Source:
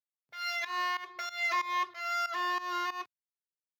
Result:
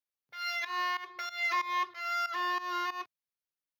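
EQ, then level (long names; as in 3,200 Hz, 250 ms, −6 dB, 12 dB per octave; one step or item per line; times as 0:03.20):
parametric band 7,700 Hz −12 dB 0.24 octaves
notch filter 660 Hz, Q 12
0.0 dB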